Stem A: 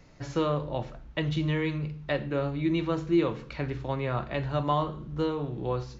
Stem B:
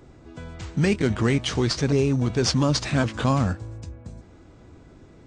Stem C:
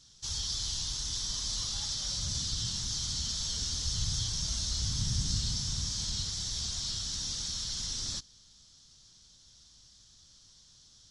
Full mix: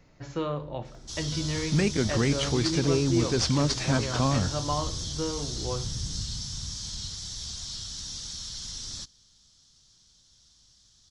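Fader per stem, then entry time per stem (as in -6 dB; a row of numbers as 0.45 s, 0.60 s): -3.5 dB, -4.0 dB, -2.0 dB; 0.00 s, 0.95 s, 0.85 s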